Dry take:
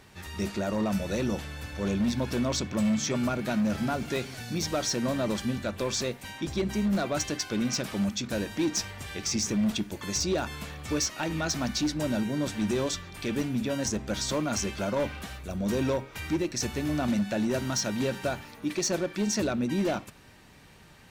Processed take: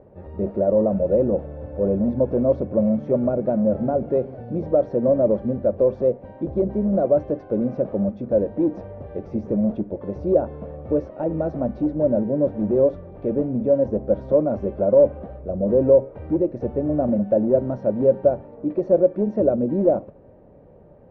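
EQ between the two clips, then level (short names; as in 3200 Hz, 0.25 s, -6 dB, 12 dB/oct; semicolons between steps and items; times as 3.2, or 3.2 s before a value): synth low-pass 550 Hz, resonance Q 4.9; air absorption 85 m; +3.5 dB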